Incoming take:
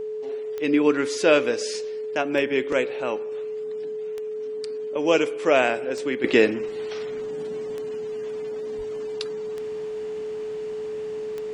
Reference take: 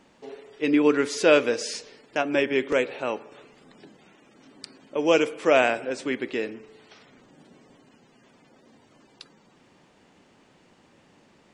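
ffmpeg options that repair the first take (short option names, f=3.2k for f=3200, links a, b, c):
-filter_complex "[0:a]adeclick=t=4,bandreject=f=430:w=30,asplit=3[a][b][c];[a]afade=t=out:st=8.77:d=0.02[d];[b]highpass=f=140:w=0.5412,highpass=f=140:w=1.3066,afade=t=in:st=8.77:d=0.02,afade=t=out:st=8.89:d=0.02[e];[c]afade=t=in:st=8.89:d=0.02[f];[d][e][f]amix=inputs=3:normalize=0,asetnsamples=n=441:p=0,asendcmd='6.24 volume volume -11.5dB',volume=0dB"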